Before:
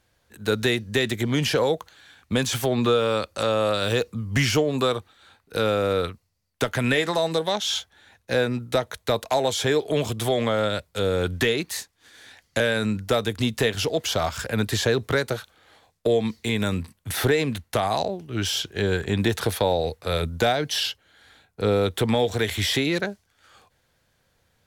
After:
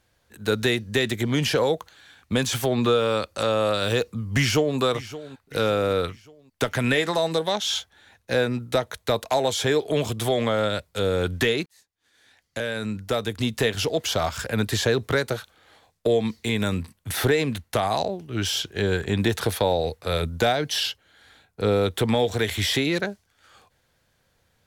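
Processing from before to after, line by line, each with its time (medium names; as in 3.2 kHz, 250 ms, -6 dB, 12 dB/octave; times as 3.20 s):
4.37–4.78 s: echo throw 570 ms, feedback 45%, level -15.5 dB
11.66–13.73 s: fade in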